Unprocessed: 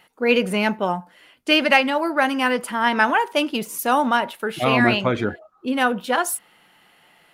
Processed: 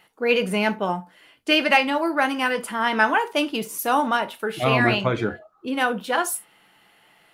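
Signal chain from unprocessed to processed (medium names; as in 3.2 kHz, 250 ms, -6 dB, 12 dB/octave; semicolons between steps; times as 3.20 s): gated-style reverb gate 90 ms falling, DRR 9.5 dB; trim -2 dB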